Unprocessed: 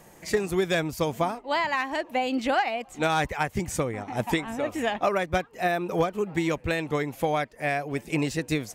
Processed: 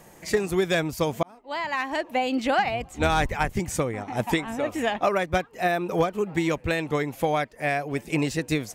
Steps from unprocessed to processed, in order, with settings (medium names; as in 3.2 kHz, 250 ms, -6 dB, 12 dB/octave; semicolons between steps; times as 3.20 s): 1.23–1.92 s: fade in; 2.58–3.57 s: octave divider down 2 oct, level +2 dB; trim +1.5 dB